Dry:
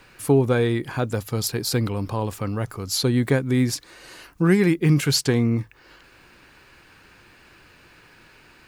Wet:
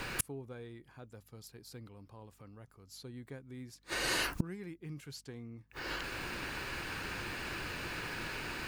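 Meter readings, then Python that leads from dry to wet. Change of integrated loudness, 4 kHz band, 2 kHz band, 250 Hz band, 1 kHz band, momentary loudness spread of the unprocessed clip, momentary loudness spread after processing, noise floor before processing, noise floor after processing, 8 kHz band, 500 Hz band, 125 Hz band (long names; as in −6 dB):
−17.5 dB, −11.5 dB, −6.0 dB, −22.5 dB, −10.0 dB, 9 LU, 18 LU, −53 dBFS, −65 dBFS, −12.5 dB, −21.5 dB, −23.0 dB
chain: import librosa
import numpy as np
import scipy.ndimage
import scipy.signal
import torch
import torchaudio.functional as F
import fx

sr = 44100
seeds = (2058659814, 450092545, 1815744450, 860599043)

y = fx.gate_flip(x, sr, shuts_db=-27.0, range_db=-38)
y = fx.add_hum(y, sr, base_hz=50, snr_db=30)
y = F.gain(torch.from_numpy(y), 11.0).numpy()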